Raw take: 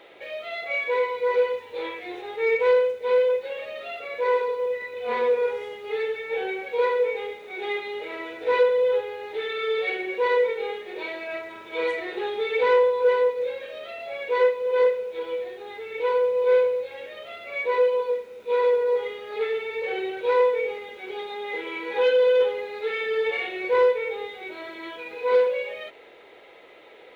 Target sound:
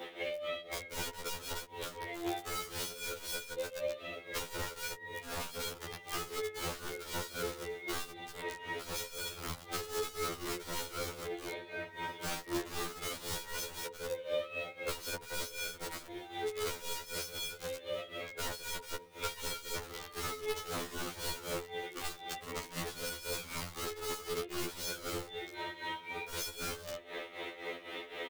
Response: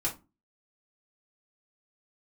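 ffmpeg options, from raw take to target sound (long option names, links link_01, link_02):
-filter_complex "[0:a]acrossover=split=140|620[link_01][link_02][link_03];[link_03]acompressor=threshold=-43dB:ratio=6[link_04];[link_01][link_02][link_04]amix=inputs=3:normalize=0,asetrate=42336,aresample=44100,firequalizer=gain_entry='entry(110,0);entry(550,-5);entry(4400,2)':delay=0.05:min_phase=1,asplit=2[link_05][link_06];[link_06]aecho=0:1:129|258|387|516|645:0.224|0.103|0.0474|0.0218|0.01[link_07];[link_05][link_07]amix=inputs=2:normalize=0,aeval=exprs='(mod(39.8*val(0)+1,2)-1)/39.8':channel_layout=same,adynamicequalizer=threshold=0.00224:dfrequency=2300:dqfactor=1.1:tfrequency=2300:tqfactor=1.1:attack=5:release=100:ratio=0.375:range=2:mode=cutabove:tftype=bell,acrossover=split=150|590[link_08][link_09][link_10];[link_08]acompressor=threshold=-56dB:ratio=4[link_11];[link_09]acompressor=threshold=-55dB:ratio=4[link_12];[link_10]acompressor=threshold=-49dB:ratio=4[link_13];[link_11][link_12][link_13]amix=inputs=3:normalize=0,tremolo=f=3.9:d=0.79,afftfilt=real='re*2*eq(mod(b,4),0)':imag='im*2*eq(mod(b,4),0)':win_size=2048:overlap=0.75,volume=15dB"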